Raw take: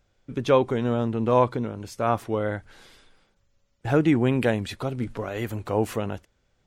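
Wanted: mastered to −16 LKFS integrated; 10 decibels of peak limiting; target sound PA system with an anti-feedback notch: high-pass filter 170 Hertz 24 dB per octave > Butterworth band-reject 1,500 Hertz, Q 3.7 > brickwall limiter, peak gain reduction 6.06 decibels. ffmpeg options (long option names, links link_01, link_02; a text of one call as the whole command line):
ffmpeg -i in.wav -af "alimiter=limit=-17dB:level=0:latency=1,highpass=frequency=170:width=0.5412,highpass=frequency=170:width=1.3066,asuperstop=centerf=1500:order=8:qfactor=3.7,volume=16.5dB,alimiter=limit=-5dB:level=0:latency=1" out.wav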